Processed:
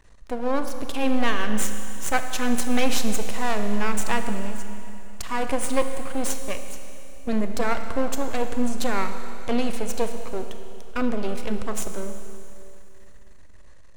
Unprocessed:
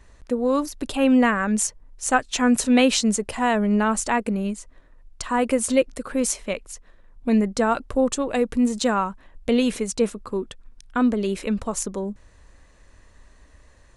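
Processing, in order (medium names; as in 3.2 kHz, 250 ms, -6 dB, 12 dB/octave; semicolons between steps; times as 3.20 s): half-wave rectifier; Schroeder reverb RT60 2.9 s, combs from 26 ms, DRR 7 dB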